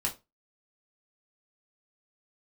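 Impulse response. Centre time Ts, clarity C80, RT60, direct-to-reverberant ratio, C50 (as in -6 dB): 13 ms, 22.5 dB, 0.25 s, -2.0 dB, 15.0 dB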